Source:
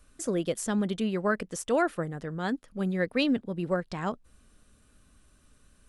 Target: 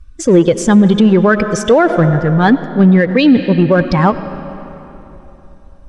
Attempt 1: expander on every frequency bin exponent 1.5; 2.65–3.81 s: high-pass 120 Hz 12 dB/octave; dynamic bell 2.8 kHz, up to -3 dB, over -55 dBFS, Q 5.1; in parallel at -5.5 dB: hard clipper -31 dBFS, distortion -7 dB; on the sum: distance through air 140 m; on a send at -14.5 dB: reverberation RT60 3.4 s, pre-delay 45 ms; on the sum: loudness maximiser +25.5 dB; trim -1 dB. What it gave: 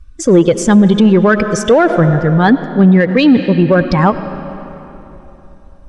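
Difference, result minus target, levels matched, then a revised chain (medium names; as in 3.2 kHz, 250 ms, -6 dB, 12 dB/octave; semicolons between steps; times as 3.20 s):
hard clipper: distortion -4 dB
expander on every frequency bin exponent 1.5; 2.65–3.81 s: high-pass 120 Hz 12 dB/octave; dynamic bell 2.8 kHz, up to -3 dB, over -55 dBFS, Q 5.1; in parallel at -5.5 dB: hard clipper -40 dBFS, distortion -2 dB; on the sum: distance through air 140 m; on a send at -14.5 dB: reverberation RT60 3.4 s, pre-delay 45 ms; on the sum: loudness maximiser +25.5 dB; trim -1 dB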